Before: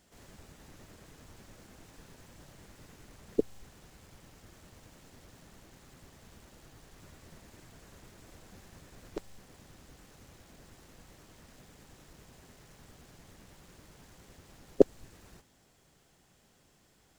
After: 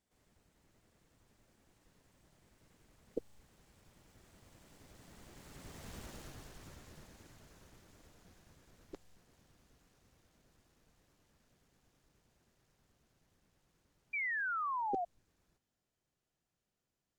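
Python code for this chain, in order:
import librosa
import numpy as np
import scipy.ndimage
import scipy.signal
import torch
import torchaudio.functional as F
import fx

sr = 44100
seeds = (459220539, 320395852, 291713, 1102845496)

y = fx.doppler_pass(x, sr, speed_mps=22, closest_m=7.9, pass_at_s=6.01)
y = fx.spec_paint(y, sr, seeds[0], shape='fall', start_s=14.13, length_s=0.92, low_hz=680.0, high_hz=2400.0, level_db=-43.0)
y = F.gain(torch.from_numpy(y), 6.5).numpy()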